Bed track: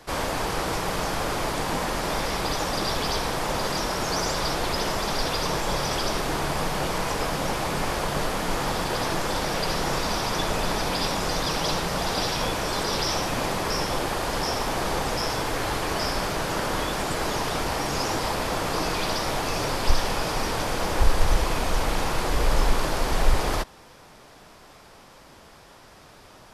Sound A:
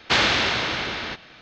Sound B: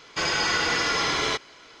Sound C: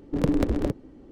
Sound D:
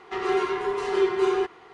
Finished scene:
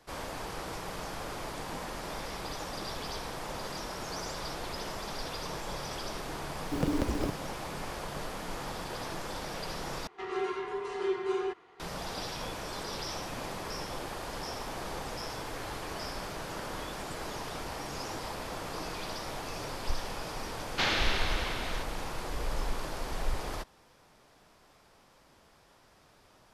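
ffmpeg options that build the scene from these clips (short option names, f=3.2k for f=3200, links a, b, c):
-filter_complex "[0:a]volume=-12dB[a];[3:a]acrusher=bits=8:dc=4:mix=0:aa=0.000001[b];[a]asplit=2[c][d];[c]atrim=end=10.074[e];[4:a]atrim=end=1.73,asetpts=PTS-STARTPTS,volume=-9dB[f];[d]atrim=start=11.796[g];[b]atrim=end=1.11,asetpts=PTS-STARTPTS,volume=-7dB,afade=t=in:d=0.004:c=hsin,afade=t=out:st=1.106:d=0.004:c=hsin,adelay=6590[h];[1:a]atrim=end=1.41,asetpts=PTS-STARTPTS,volume=-10dB,afade=t=in:d=0.004:c=hsin,afade=t=out:st=1.406:d=0.004:c=hsin,adelay=911988S[i];[e][f]acrossfade=d=0.004:c1=hsin:c2=hsin[j];[j][g]acrossfade=d=0.004:c1=hsin:c2=hsin[k];[k][h][i]amix=inputs=3:normalize=0"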